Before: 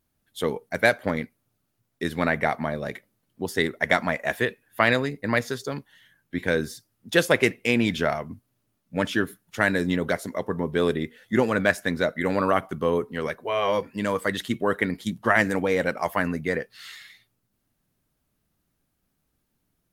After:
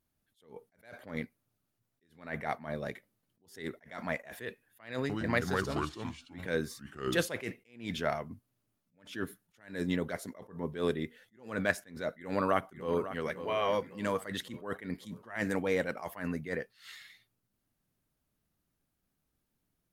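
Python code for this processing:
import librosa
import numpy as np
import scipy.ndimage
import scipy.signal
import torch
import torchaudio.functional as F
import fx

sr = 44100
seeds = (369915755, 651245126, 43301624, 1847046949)

y = fx.echo_pitch(x, sr, ms=112, semitones=-4, count=2, db_per_echo=-3.0, at=(4.98, 7.35))
y = fx.echo_throw(y, sr, start_s=12.12, length_s=1.09, ms=550, feedback_pct=55, wet_db=-13.0)
y = fx.attack_slew(y, sr, db_per_s=140.0)
y = y * 10.0 ** (-6.5 / 20.0)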